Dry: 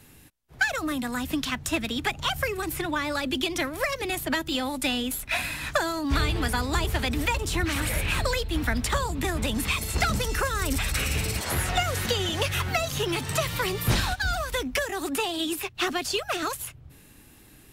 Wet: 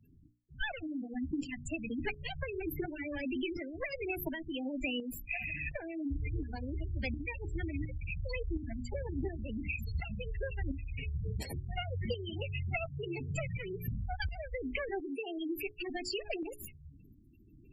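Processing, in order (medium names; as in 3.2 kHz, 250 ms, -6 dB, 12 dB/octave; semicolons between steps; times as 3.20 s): comb filter that takes the minimum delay 0.41 ms; spectral gate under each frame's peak -10 dB strong; hum notches 60/120/180/240/300/360/420 Hz; compression 5:1, threshold -31 dBFS, peak gain reduction 9.5 dB; tremolo saw up 1.4 Hz, depth 55%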